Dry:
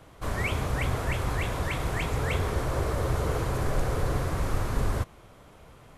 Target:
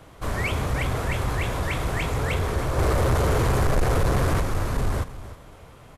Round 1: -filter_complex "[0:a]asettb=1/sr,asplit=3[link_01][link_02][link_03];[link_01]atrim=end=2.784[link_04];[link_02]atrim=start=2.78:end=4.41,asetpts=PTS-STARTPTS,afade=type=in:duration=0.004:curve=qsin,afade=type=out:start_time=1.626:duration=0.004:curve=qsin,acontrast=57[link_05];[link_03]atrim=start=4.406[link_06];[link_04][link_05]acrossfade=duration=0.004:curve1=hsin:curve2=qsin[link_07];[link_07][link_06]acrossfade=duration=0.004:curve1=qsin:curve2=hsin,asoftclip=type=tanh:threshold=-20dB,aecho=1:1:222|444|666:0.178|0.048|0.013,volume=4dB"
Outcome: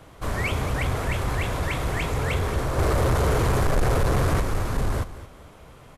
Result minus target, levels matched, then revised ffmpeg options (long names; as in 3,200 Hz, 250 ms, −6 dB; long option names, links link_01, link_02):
echo 92 ms early
-filter_complex "[0:a]asettb=1/sr,asplit=3[link_01][link_02][link_03];[link_01]atrim=end=2.784[link_04];[link_02]atrim=start=2.78:end=4.41,asetpts=PTS-STARTPTS,afade=type=in:duration=0.004:curve=qsin,afade=type=out:start_time=1.626:duration=0.004:curve=qsin,acontrast=57[link_05];[link_03]atrim=start=4.406[link_06];[link_04][link_05]acrossfade=duration=0.004:curve1=hsin:curve2=qsin[link_07];[link_07][link_06]acrossfade=duration=0.004:curve1=qsin:curve2=hsin,asoftclip=type=tanh:threshold=-20dB,aecho=1:1:314|628|942:0.178|0.048|0.013,volume=4dB"